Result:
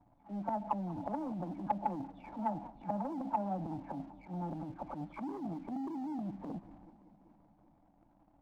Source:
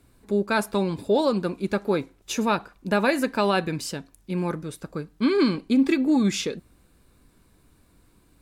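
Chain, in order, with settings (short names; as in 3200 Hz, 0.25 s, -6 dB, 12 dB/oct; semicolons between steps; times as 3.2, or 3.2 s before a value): spectral delay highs early, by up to 0.32 s; treble ducked by the level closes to 550 Hz, closed at -22 dBFS; vocal tract filter u; bell 400 Hz -13 dB 0.49 oct; limiter -29 dBFS, peak gain reduction 11 dB; transient shaper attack -11 dB, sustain +9 dB; compressor, threshold -41 dBFS, peak gain reduction 10 dB; sample leveller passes 1; resonant low shelf 550 Hz -7.5 dB, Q 3; warbling echo 0.192 s, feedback 75%, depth 156 cents, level -20 dB; gain +10 dB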